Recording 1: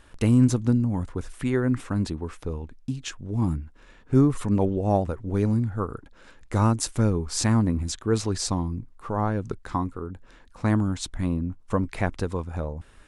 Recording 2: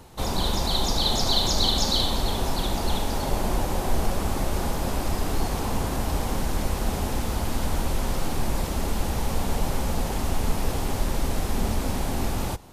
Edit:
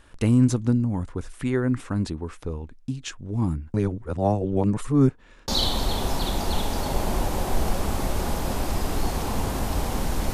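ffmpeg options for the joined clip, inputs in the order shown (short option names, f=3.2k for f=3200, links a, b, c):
-filter_complex "[0:a]apad=whole_dur=10.33,atrim=end=10.33,asplit=2[a][b];[a]atrim=end=3.742[c];[b]atrim=start=3.738:end=5.482,asetpts=PTS-STARTPTS,areverse[d];[1:a]atrim=start=1.848:end=6.7[e];[c][d]acrossfade=d=0.004:c1=hsin:c2=hsin[f];[f][e]acrossfade=d=0.004:c1=hsin:c2=hsin"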